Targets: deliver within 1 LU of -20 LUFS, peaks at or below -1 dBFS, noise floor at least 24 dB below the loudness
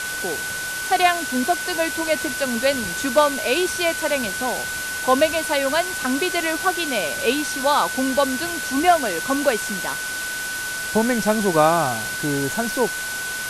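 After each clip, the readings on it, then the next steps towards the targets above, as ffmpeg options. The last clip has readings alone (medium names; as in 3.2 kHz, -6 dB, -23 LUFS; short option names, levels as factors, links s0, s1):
steady tone 1.5 kHz; tone level -27 dBFS; noise floor -28 dBFS; noise floor target -45 dBFS; loudness -21.0 LUFS; peak level -3.5 dBFS; loudness target -20.0 LUFS
-> -af "bandreject=f=1500:w=30"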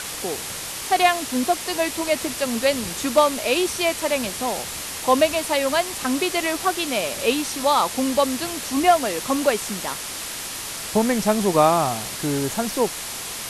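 steady tone not found; noise floor -32 dBFS; noise floor target -46 dBFS
-> -af "afftdn=nr=14:nf=-32"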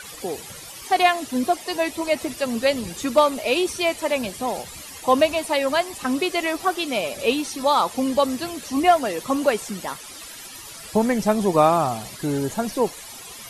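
noise floor -39 dBFS; noise floor target -47 dBFS
-> -af "afftdn=nr=8:nf=-39"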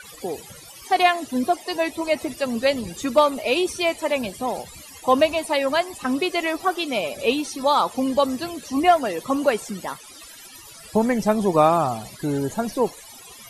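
noise floor -43 dBFS; noise floor target -47 dBFS
-> -af "afftdn=nr=6:nf=-43"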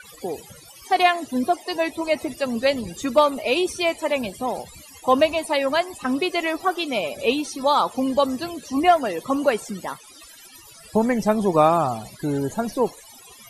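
noise floor -46 dBFS; noise floor target -47 dBFS; loudness -22.5 LUFS; peak level -4.0 dBFS; loudness target -20.0 LUFS
-> -af "volume=1.33"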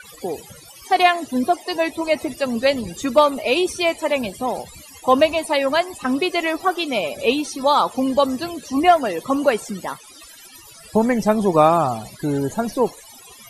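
loudness -20.0 LUFS; peak level -1.5 dBFS; noise floor -44 dBFS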